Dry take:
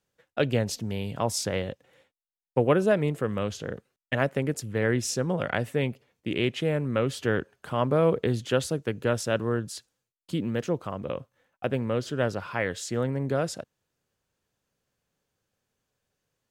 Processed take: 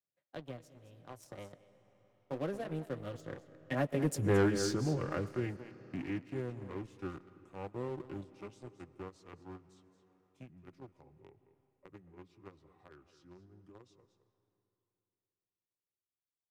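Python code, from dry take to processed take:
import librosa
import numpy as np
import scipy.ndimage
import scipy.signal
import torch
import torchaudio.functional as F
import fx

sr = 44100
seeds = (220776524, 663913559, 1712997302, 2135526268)

p1 = fx.pitch_glide(x, sr, semitones=-4.5, runs='starting unshifted')
p2 = fx.doppler_pass(p1, sr, speed_mps=34, closest_m=5.3, pass_at_s=4.33)
p3 = fx.peak_eq(p2, sr, hz=2700.0, db=-4.5, octaves=2.9)
p4 = fx.notch_comb(p3, sr, f0_hz=220.0)
p5 = 10.0 ** (-22.5 / 20.0) * np.tanh(p4 / 10.0 ** (-22.5 / 20.0))
p6 = p4 + (p5 * 10.0 ** (-10.0 / 20.0))
p7 = scipy.signal.sosfilt(scipy.signal.butter(2, 76.0, 'highpass', fs=sr, output='sos'), p6)
p8 = p7 + 10.0 ** (-13.5 / 20.0) * np.pad(p7, (int(219 * sr / 1000.0), 0))[:len(p7)]
p9 = fx.dynamic_eq(p8, sr, hz=250.0, q=2.5, threshold_db=-56.0, ratio=4.0, max_db=4)
p10 = fx.leveller(p9, sr, passes=2)
p11 = fx.rev_freeverb(p10, sr, rt60_s=3.1, hf_ratio=0.8, predelay_ms=70, drr_db=19.0)
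y = fx.band_squash(p11, sr, depth_pct=40)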